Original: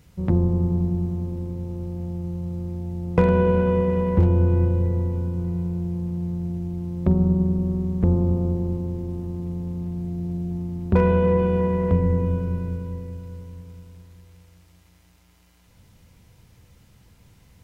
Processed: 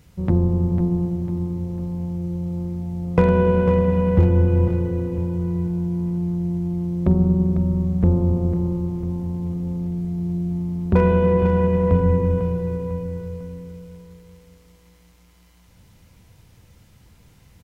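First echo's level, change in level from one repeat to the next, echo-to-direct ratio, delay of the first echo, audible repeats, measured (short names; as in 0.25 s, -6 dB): -9.5 dB, -6.5 dB, -8.5 dB, 0.499 s, 3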